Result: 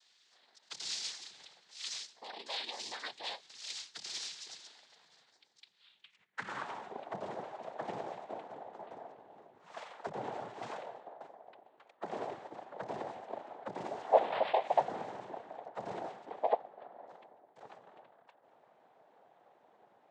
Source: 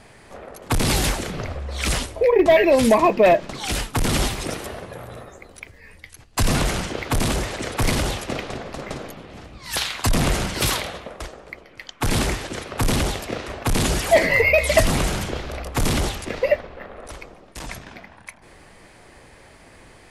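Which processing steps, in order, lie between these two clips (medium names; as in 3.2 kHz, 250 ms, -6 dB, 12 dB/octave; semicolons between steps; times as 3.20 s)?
5.29–6.49 s: tilt EQ -2 dB/octave; noise-vocoded speech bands 6; band-pass sweep 4.7 kHz -> 690 Hz, 5.78–6.92 s; trim -8 dB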